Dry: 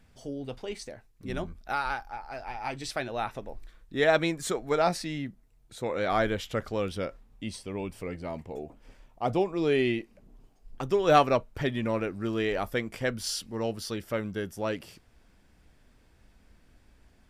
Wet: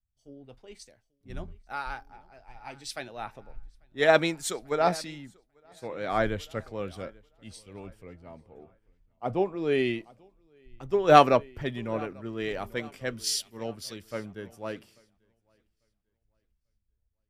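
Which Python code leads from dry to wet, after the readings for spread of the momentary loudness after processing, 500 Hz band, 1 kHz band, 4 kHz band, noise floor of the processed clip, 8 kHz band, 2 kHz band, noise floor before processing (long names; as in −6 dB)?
22 LU, +0.5 dB, +2.0 dB, +1.0 dB, −79 dBFS, +2.5 dB, 0.0 dB, −61 dBFS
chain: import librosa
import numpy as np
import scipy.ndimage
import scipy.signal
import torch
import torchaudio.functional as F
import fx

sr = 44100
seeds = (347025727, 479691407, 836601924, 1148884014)

p1 = x + fx.echo_feedback(x, sr, ms=843, feedback_pct=51, wet_db=-17, dry=0)
p2 = fx.band_widen(p1, sr, depth_pct=100)
y = p2 * 10.0 ** (-4.5 / 20.0)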